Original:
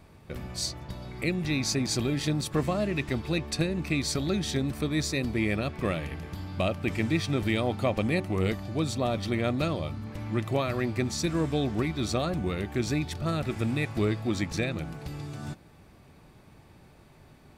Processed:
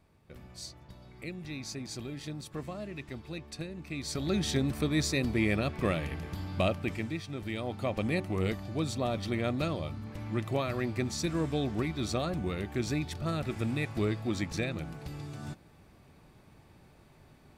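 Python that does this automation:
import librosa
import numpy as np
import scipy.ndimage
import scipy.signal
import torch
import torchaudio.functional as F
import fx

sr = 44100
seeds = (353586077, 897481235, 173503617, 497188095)

y = fx.gain(x, sr, db=fx.line((3.87, -12.0), (4.38, -0.5), (6.69, -0.5), (7.26, -12.0), (8.08, -3.5)))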